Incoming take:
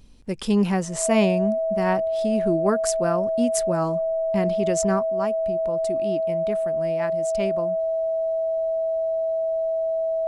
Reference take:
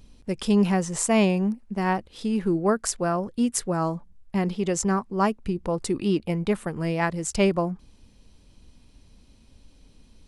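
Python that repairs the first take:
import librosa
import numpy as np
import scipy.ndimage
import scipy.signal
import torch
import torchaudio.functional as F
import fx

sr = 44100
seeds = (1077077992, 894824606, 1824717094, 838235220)

y = fx.notch(x, sr, hz=650.0, q=30.0)
y = fx.gain(y, sr, db=fx.steps((0.0, 0.0), (5.05, 7.5)))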